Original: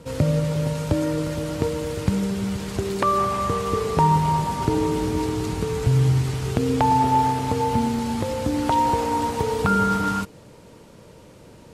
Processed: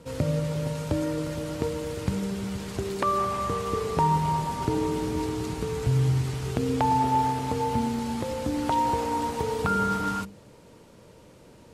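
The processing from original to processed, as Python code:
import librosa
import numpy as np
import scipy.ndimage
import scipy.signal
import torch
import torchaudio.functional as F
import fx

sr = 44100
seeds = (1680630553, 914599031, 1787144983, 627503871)

y = fx.hum_notches(x, sr, base_hz=50, count=4)
y = y * 10.0 ** (-4.5 / 20.0)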